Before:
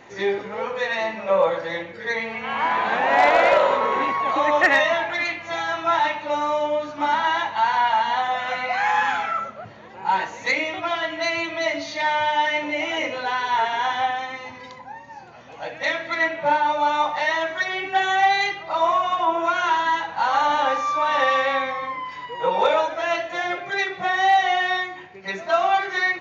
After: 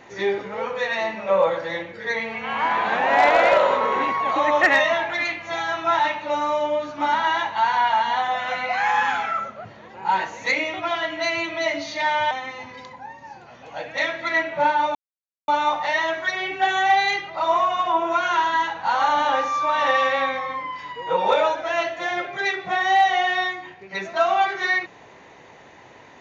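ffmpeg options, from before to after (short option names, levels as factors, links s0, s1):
-filter_complex "[0:a]asplit=3[s0][s1][s2];[s0]atrim=end=12.312[s3];[s1]atrim=start=14.168:end=16.81,asetpts=PTS-STARTPTS,afade=t=out:st=2.638:d=0.004:c=hsin,apad=pad_dur=0.53[s4];[s2]atrim=start=16.81,asetpts=PTS-STARTPTS,afade=t=in:d=0.004:c=hsin[s5];[s4][s5]concat=n=2:v=0:a=1[s6];[s3][s6]acrossfade=d=0.004:c1=hsin:c2=hsin"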